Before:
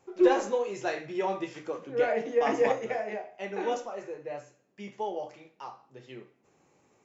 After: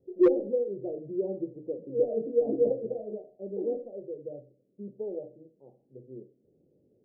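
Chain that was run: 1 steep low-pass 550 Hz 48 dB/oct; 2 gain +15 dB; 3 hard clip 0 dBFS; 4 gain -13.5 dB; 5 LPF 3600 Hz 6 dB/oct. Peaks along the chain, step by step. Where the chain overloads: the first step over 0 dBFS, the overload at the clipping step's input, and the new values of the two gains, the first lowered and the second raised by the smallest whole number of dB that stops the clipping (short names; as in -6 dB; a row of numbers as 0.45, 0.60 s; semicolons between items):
-12.0, +3.0, 0.0, -13.5, -13.5 dBFS; step 2, 3.0 dB; step 2 +12 dB, step 4 -10.5 dB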